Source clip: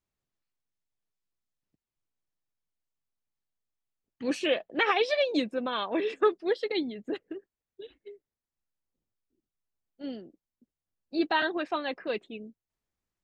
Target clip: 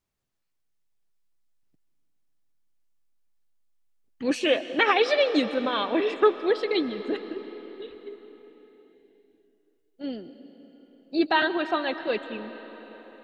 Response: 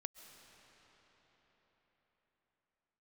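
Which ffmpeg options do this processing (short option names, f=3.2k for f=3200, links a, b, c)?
-filter_complex "[0:a]asplit=2[a][b];[1:a]atrim=start_sample=2205,asetrate=48510,aresample=44100[c];[b][c]afir=irnorm=-1:irlink=0,volume=9.5dB[d];[a][d]amix=inputs=2:normalize=0,volume=-4dB"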